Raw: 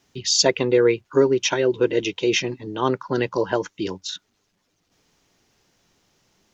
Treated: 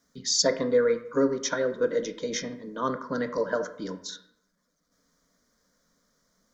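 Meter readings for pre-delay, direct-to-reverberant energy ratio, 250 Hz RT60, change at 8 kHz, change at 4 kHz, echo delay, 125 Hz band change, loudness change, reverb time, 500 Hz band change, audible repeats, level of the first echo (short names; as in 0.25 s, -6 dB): 17 ms, 8.0 dB, 0.75 s, n/a, -7.5 dB, none, -11.0 dB, -6.0 dB, 0.75 s, -6.0 dB, none, none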